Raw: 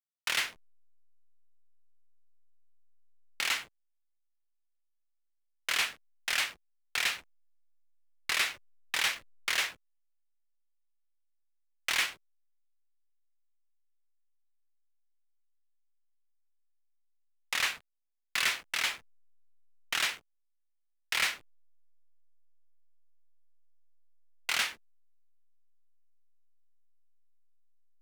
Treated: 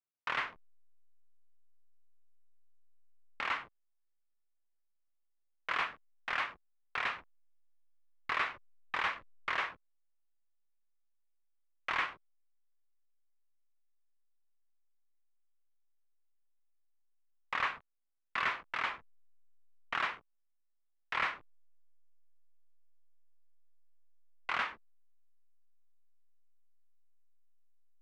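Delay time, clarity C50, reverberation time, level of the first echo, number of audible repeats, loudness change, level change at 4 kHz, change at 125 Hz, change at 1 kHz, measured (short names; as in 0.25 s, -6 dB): none, none, none, none, none, -5.0 dB, -12.0 dB, n/a, +4.5 dB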